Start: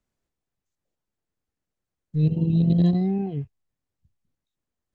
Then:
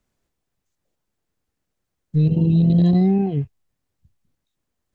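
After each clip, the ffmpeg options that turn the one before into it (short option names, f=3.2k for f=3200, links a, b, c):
-af "alimiter=limit=-17dB:level=0:latency=1:release=19,volume=7dB"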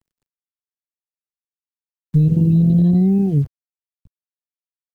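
-filter_complex "[0:a]acrusher=bits=8:dc=4:mix=0:aa=0.000001,acrossover=split=510|1800[a][b][c];[a]acompressor=threshold=-21dB:ratio=4[d];[b]acompressor=threshold=-45dB:ratio=4[e];[c]acompressor=threshold=-53dB:ratio=4[f];[d][e][f]amix=inputs=3:normalize=0,lowshelf=f=410:g=12,volume=-1.5dB"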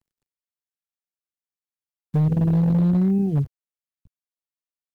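-af "aeval=exprs='0.316*(abs(mod(val(0)/0.316+3,4)-2)-1)':c=same,volume=-4.5dB"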